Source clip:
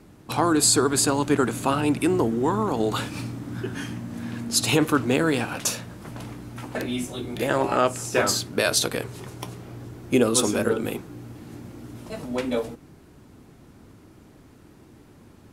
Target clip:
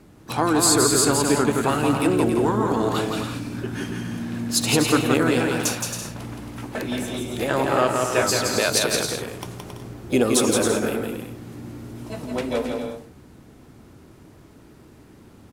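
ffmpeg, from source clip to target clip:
-filter_complex "[0:a]asplit=2[a][b];[b]asetrate=66075,aresample=44100,atempo=0.66742,volume=-16dB[c];[a][c]amix=inputs=2:normalize=0,aecho=1:1:170|272|333.2|369.9|392:0.631|0.398|0.251|0.158|0.1"

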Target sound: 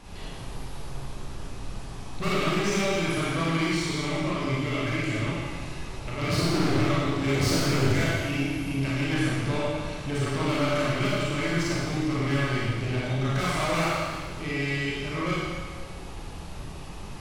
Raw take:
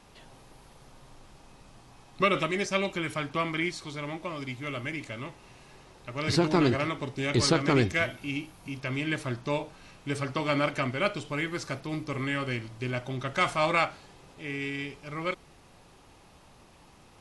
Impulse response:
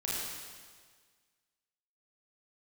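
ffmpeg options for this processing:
-filter_complex "[0:a]lowshelf=f=130:g=10.5,asplit=2[a][b];[b]acompressor=threshold=-36dB:ratio=6,volume=2dB[c];[a][c]amix=inputs=2:normalize=0,asoftclip=type=tanh:threshold=-27dB[d];[1:a]atrim=start_sample=2205,asetrate=43218,aresample=44100[e];[d][e]afir=irnorm=-1:irlink=0"

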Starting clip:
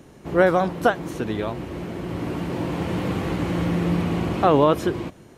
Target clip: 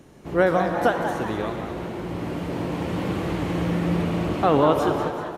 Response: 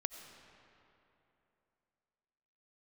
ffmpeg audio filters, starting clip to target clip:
-filter_complex "[0:a]asplit=7[a][b][c][d][e][f][g];[b]adelay=189,afreqshift=140,volume=-10dB[h];[c]adelay=378,afreqshift=280,volume=-15dB[i];[d]adelay=567,afreqshift=420,volume=-20.1dB[j];[e]adelay=756,afreqshift=560,volume=-25.1dB[k];[f]adelay=945,afreqshift=700,volume=-30.1dB[l];[g]adelay=1134,afreqshift=840,volume=-35.2dB[m];[a][h][i][j][k][l][m]amix=inputs=7:normalize=0[n];[1:a]atrim=start_sample=2205,asetrate=61740,aresample=44100[o];[n][o]afir=irnorm=-1:irlink=0,volume=2dB"

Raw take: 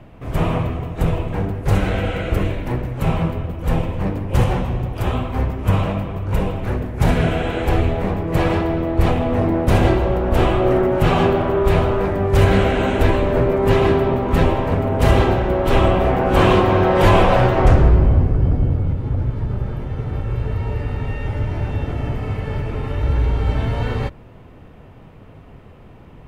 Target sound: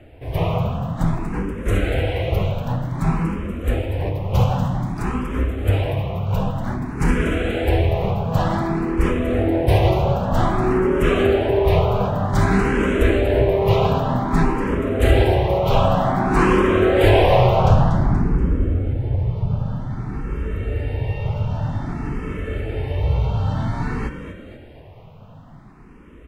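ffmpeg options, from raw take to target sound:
-filter_complex "[0:a]asplit=6[a][b][c][d][e][f];[b]adelay=239,afreqshift=37,volume=-9.5dB[g];[c]adelay=478,afreqshift=74,volume=-16.2dB[h];[d]adelay=717,afreqshift=111,volume=-23dB[i];[e]adelay=956,afreqshift=148,volume=-29.7dB[j];[f]adelay=1195,afreqshift=185,volume=-36.5dB[k];[a][g][h][i][j][k]amix=inputs=6:normalize=0,asplit=2[l][m];[m]afreqshift=0.53[n];[l][n]amix=inputs=2:normalize=1,volume=1dB"

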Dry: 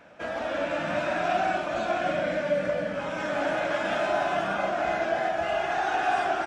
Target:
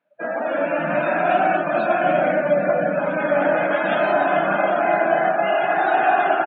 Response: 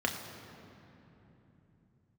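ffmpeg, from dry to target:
-af "aecho=1:1:794:0.473,afftdn=nr=32:nf=-35,afftfilt=real='re*between(b*sr/4096,130,4500)':imag='im*between(b*sr/4096,130,4500)':win_size=4096:overlap=0.75,volume=7.5dB"

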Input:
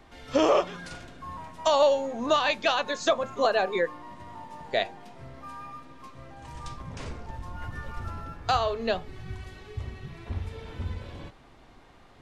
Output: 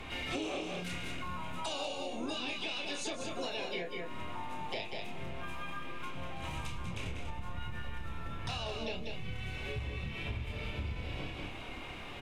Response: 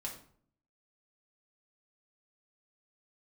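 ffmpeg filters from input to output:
-filter_complex "[0:a]superequalizer=12b=3.55:14b=0.562,acrossover=split=330|3000[a][b][c];[b]acompressor=threshold=-42dB:ratio=3[d];[a][d][c]amix=inputs=3:normalize=0,asplit=3[e][f][g];[f]asetrate=37084,aresample=44100,atempo=1.18921,volume=-15dB[h];[g]asetrate=58866,aresample=44100,atempo=0.749154,volume=-6dB[i];[e][h][i]amix=inputs=3:normalize=0,acrossover=split=410|910[j][k][l];[l]alimiter=level_in=1dB:limit=-24dB:level=0:latency=1:release=32,volume=-1dB[m];[j][k][m]amix=inputs=3:normalize=0,asplit=2[n][o];[o]adelay=28,volume=-4dB[p];[n][p]amix=inputs=2:normalize=0,asplit=2[q][r];[r]aecho=0:1:192:0.473[s];[q][s]amix=inputs=2:normalize=0,acompressor=threshold=-41dB:ratio=6,volume=5.5dB"

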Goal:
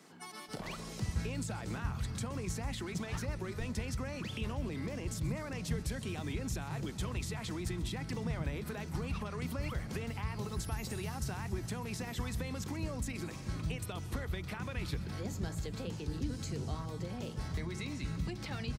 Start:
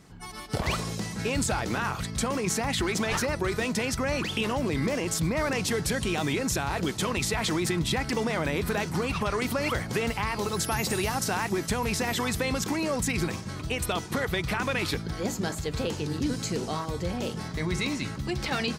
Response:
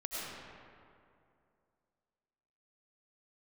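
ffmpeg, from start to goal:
-filter_complex "[0:a]acrossover=split=180[a][b];[a]adelay=480[c];[c][b]amix=inputs=2:normalize=0,asplit=2[d][e];[1:a]atrim=start_sample=2205,highshelf=f=5k:g=11,adelay=130[f];[e][f]afir=irnorm=-1:irlink=0,volume=-22dB[g];[d][g]amix=inputs=2:normalize=0,acrossover=split=190[h][i];[i]acompressor=threshold=-44dB:ratio=3[j];[h][j]amix=inputs=2:normalize=0,volume=-2dB"

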